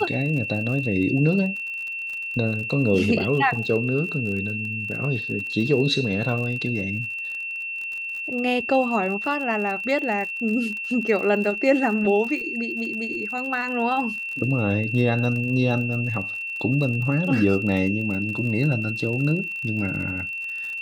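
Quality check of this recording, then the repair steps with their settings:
surface crackle 50 per second −31 dBFS
whistle 2,700 Hz −28 dBFS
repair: click removal
notch filter 2,700 Hz, Q 30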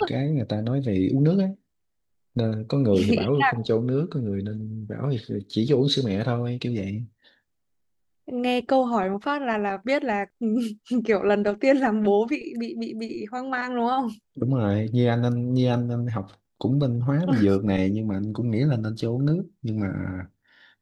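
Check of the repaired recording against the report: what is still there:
none of them is left

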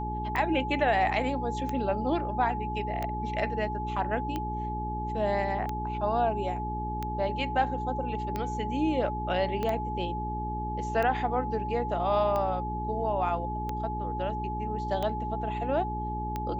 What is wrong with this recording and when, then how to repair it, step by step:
mains hum 60 Hz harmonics 7 −35 dBFS
scratch tick 45 rpm −19 dBFS
whistle 850 Hz −33 dBFS
0:09.63: click −19 dBFS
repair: click removal
hum removal 60 Hz, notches 7
notch filter 850 Hz, Q 30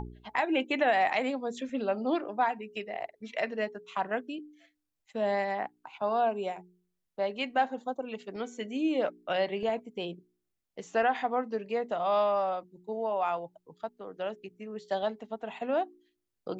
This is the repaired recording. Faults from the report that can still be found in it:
0:09.63: click

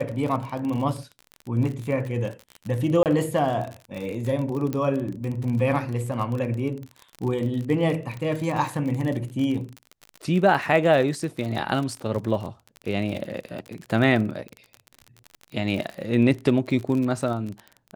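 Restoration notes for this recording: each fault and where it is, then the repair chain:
surface crackle 37 per second −29 dBFS
0:03.03–0:03.06: drop-out 28 ms
0:04.73: click −16 dBFS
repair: click removal
repair the gap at 0:03.03, 28 ms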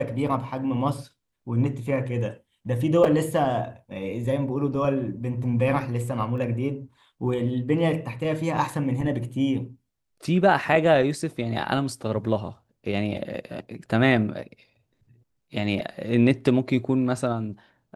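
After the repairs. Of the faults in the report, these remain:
none of them is left

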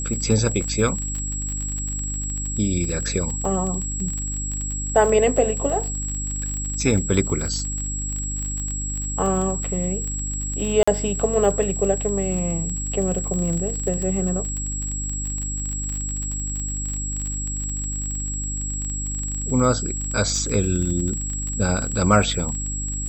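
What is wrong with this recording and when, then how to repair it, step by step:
surface crackle 32 per second −26 dBFS
mains hum 50 Hz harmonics 6 −29 dBFS
whistle 7,700 Hz −28 dBFS
0:00.64: drop-out 3.5 ms
0:10.83–0:10.88: drop-out 45 ms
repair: click removal
hum removal 50 Hz, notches 6
notch filter 7,700 Hz, Q 30
repair the gap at 0:00.64, 3.5 ms
repair the gap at 0:10.83, 45 ms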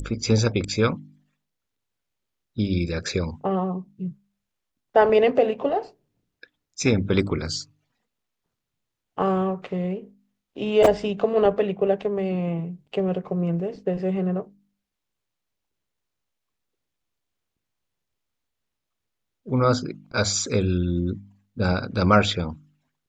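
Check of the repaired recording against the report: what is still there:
none of them is left

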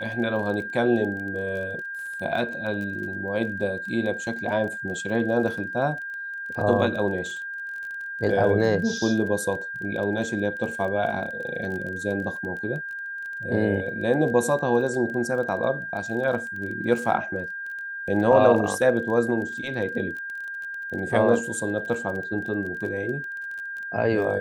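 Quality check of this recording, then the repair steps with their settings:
surface crackle 24 per second −33 dBFS
whistle 1,600 Hz −31 dBFS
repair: click removal
notch filter 1,600 Hz, Q 30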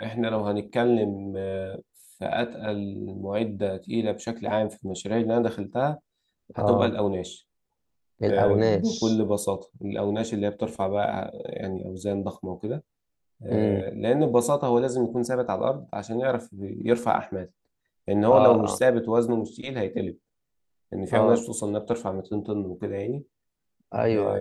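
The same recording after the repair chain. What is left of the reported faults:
none of them is left

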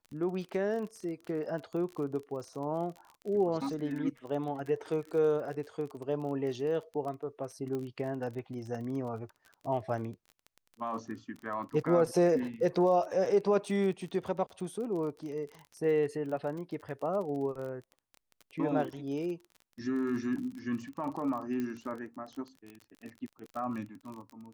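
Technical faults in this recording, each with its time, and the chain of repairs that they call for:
surface crackle 35 per second −39 dBFS
0:07.75: click −26 dBFS
0:21.60: click −24 dBFS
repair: click removal

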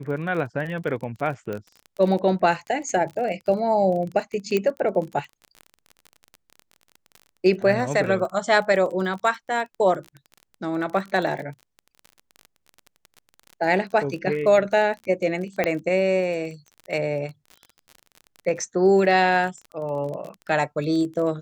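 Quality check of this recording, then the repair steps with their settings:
surface crackle 30 per second −31 dBFS
0:01.53: click −19 dBFS
0:04.57: click −10 dBFS
0:15.64: click −9 dBFS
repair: click removal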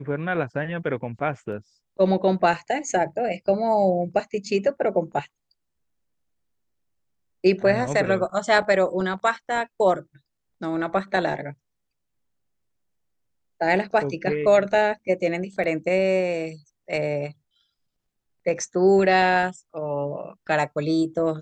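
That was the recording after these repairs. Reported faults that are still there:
0:01.53: click
0:15.64: click

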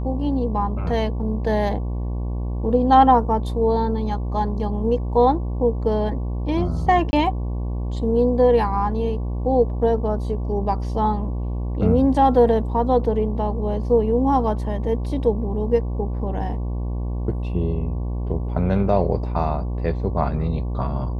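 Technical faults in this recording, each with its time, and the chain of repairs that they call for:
mains buzz 60 Hz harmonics 19 −25 dBFS
0:07.11–0:07.13: drop-out 20 ms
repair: hum removal 60 Hz, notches 19
repair the gap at 0:07.11, 20 ms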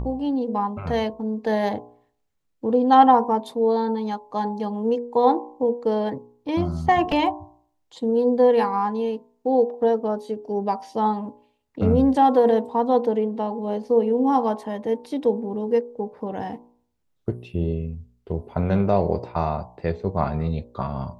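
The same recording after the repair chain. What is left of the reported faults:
none of them is left

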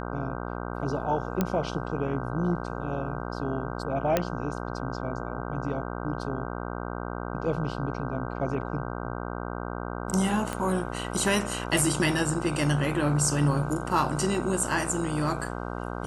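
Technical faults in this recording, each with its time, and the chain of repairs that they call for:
mains buzz 60 Hz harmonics 26 −34 dBFS
0:01.41: click −11 dBFS
0:04.17: click −9 dBFS
0:10.53: click −17 dBFS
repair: click removal
hum removal 60 Hz, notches 26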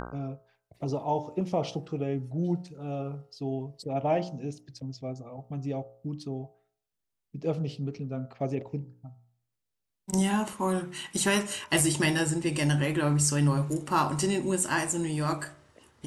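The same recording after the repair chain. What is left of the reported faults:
0:10.53: click

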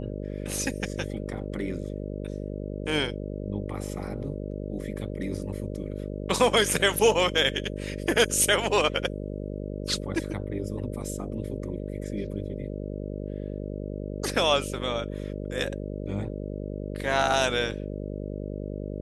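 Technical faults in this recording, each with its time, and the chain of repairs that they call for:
mains buzz 50 Hz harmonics 12 −34 dBFS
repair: hum removal 50 Hz, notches 12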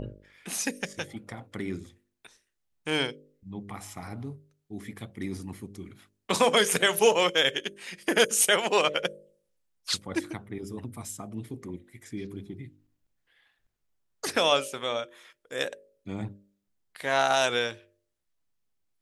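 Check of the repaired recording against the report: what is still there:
none of them is left

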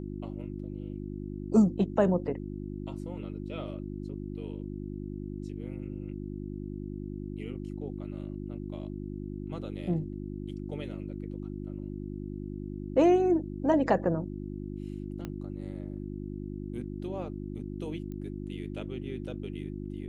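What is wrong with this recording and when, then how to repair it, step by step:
mains hum 50 Hz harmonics 7 −38 dBFS
0:15.25: click −23 dBFS
0:18.12: click −31 dBFS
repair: click removal
hum removal 50 Hz, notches 7

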